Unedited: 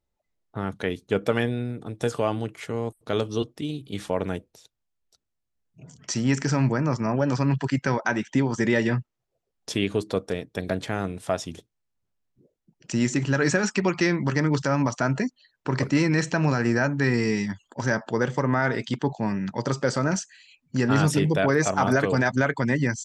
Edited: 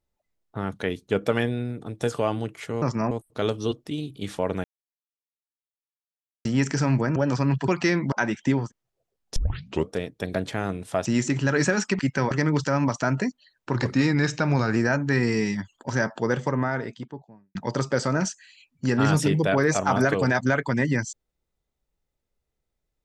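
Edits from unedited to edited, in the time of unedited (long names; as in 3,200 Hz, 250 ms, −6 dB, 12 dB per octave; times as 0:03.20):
0:04.35–0:06.16: silence
0:06.87–0:07.16: move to 0:02.82
0:07.68–0:08.00: swap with 0:13.85–0:14.29
0:08.52–0:08.99: remove, crossfade 0.16 s
0:09.71: tape start 0.54 s
0:11.40–0:12.91: remove
0:15.73–0:16.67: play speed 93%
0:18.17–0:19.46: fade out and dull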